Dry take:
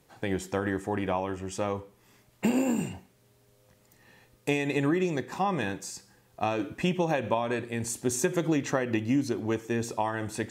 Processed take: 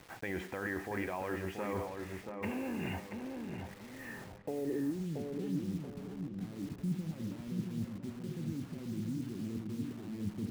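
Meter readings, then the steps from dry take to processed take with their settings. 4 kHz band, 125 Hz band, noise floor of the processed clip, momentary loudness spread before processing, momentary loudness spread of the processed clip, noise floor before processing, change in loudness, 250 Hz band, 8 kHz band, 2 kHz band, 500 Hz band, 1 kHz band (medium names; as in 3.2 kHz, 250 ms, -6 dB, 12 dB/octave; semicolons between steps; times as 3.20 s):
-12.5 dB, -5.5 dB, -50 dBFS, 7 LU, 7 LU, -64 dBFS, -10.0 dB, -7.5 dB, -19.0 dB, -9.0 dB, -11.0 dB, -13.5 dB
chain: dynamic bell 130 Hz, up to -6 dB, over -46 dBFS, Q 1.6; peak limiter -25 dBFS, peak gain reduction 13 dB; reverse; compression 16:1, threshold -41 dBFS, peak gain reduction 13 dB; reverse; low-pass sweep 2.1 kHz -> 190 Hz, 4.05–5.02 s; bit crusher 10-bit; on a send: filtered feedback delay 681 ms, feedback 39%, low-pass 1.2 kHz, level -4 dB; on the sum: trim +6 dB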